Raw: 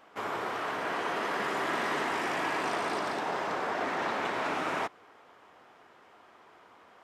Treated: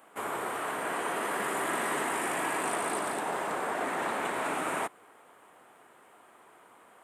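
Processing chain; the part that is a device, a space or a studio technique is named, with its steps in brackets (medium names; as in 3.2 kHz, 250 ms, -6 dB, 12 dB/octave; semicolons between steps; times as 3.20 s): budget condenser microphone (high-pass 110 Hz; resonant high shelf 7 kHz +10 dB, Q 3)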